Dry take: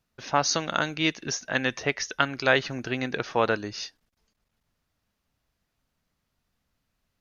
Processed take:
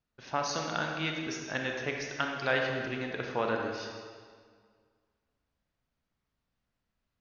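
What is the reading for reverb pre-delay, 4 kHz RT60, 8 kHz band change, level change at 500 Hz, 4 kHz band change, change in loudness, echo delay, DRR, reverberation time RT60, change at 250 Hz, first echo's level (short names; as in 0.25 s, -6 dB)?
27 ms, 1.5 s, n/a, -5.0 dB, -8.0 dB, -6.5 dB, none, 1.0 dB, 1.9 s, -6.0 dB, none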